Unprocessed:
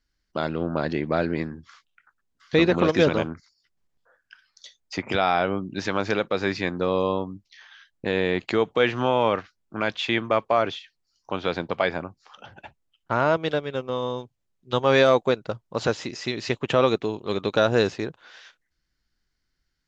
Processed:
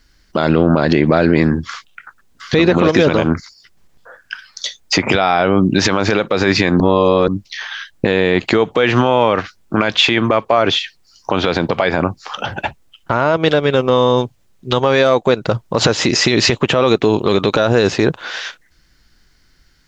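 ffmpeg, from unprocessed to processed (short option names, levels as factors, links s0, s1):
-filter_complex "[0:a]asplit=3[s0][s1][s2];[s0]atrim=end=6.802[s3];[s1]atrim=start=6.798:end=7.282,asetpts=PTS-STARTPTS,areverse[s4];[s2]atrim=start=7.278[s5];[s3][s4]acrossfade=d=0.004:c1=hsin:c2=hsin[s6];[s6][s5]acrossfade=d=0.004:c1=hsin:c2=hsin,acompressor=threshold=0.0562:ratio=6,alimiter=level_in=14.1:limit=0.891:release=50:level=0:latency=1,volume=0.891"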